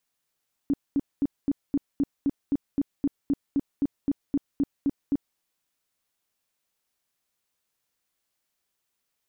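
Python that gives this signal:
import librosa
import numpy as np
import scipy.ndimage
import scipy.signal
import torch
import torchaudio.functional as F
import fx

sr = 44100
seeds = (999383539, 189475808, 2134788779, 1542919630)

y = fx.tone_burst(sr, hz=281.0, cycles=10, every_s=0.26, bursts=18, level_db=-19.5)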